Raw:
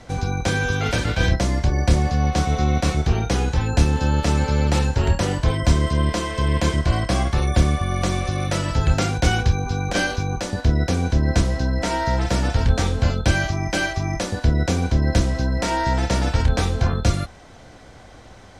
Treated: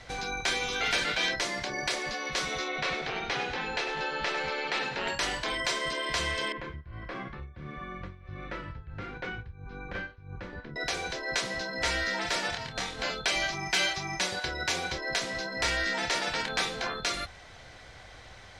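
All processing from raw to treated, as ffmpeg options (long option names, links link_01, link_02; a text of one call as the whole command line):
ffmpeg -i in.wav -filter_complex "[0:a]asettb=1/sr,asplit=3[link_01][link_02][link_03];[link_01]atrim=end=2.684[link_04];[link_02]atrim=start=2.68:end=5.08,asetpts=PTS-STARTPTS,afade=type=in:duration=0.004:curve=qsin,afade=type=out:start_time=2.396:duration=0.004:curve=qsin,lowpass=3600,aecho=1:1:100|200|300|400|500:0.316|0.149|0.0699|0.0328|0.0154,atrim=end_sample=105840[link_05];[link_03]atrim=start=5.076[link_06];[link_04][link_05]acrossfade=duration=0.004:curve1=hsin:curve2=qsin[link_07];[link_07][link_06]acrossfade=duration=0.004:curve1=qsin:curve2=hsin,asettb=1/sr,asplit=3[link_08][link_09][link_10];[link_08]atrim=end=6.524[link_11];[link_09]atrim=start=6.52:end=10.76,asetpts=PTS-STARTPTS,afade=type=in:duration=0.004:curve=qsin,afade=type=out:start_time=4.236:duration=0.004:curve=qsin,lowpass=1200,equalizer=frequency=690:width=1.8:gain=-12.5,tremolo=f=1.5:d=0.91[link_12];[link_10]atrim=start=10.756[link_13];[link_11][link_12]acrossfade=duration=0.004:curve1=hsin:curve2=qsin[link_14];[link_14][link_13]acrossfade=duration=0.004:curve1=qsin:curve2=hsin,asettb=1/sr,asplit=3[link_15][link_16][link_17];[link_15]atrim=end=12.504[link_18];[link_16]atrim=start=12.5:end=12.99,asetpts=PTS-STARTPTS,afade=type=in:duration=0.004:curve=qsin,afade=type=out:start_time=0.486:duration=0.004:curve=qsin,acompressor=threshold=-22dB:ratio=10:attack=3.2:release=140:knee=1:detection=peak,asplit=2[link_19][link_20];[link_20]adelay=26,volume=-3dB[link_21];[link_19][link_21]amix=inputs=2:normalize=0,atrim=end_sample=21609[link_22];[link_17]atrim=start=12.986[link_23];[link_18][link_22]acrossfade=duration=0.004:curve1=hsin:curve2=qsin[link_24];[link_24][link_23]acrossfade=duration=0.004:curve1=qsin:curve2=hsin,asettb=1/sr,asplit=3[link_25][link_26][link_27];[link_25]atrim=end=13.524[link_28];[link_26]atrim=start=13.52:end=14.98,asetpts=PTS-STARTPTS,afade=type=in:duration=0.004:curve=qsin,afade=type=out:start_time=1.456:duration=0.004:curve=qsin,highpass=frequency=280:poles=1,aecho=1:1:5.4:0.71,atrim=end_sample=64386,asoftclip=type=hard:threshold=-14dB[link_29];[link_27]atrim=start=14.976[link_30];[link_28][link_29]acrossfade=duration=0.004:curve1=hsin:curve2=qsin[link_31];[link_31][link_30]acrossfade=duration=0.004:curve1=qsin:curve2=hsin,afftfilt=real='re*lt(hypot(re,im),0.355)':imag='im*lt(hypot(re,im),0.355)':win_size=1024:overlap=0.75,equalizer=frequency=250:width_type=o:width=1:gain=-8,equalizer=frequency=2000:width_type=o:width=1:gain=7,equalizer=frequency=4000:width_type=o:width=1:gain=6,volume=-6dB" out.wav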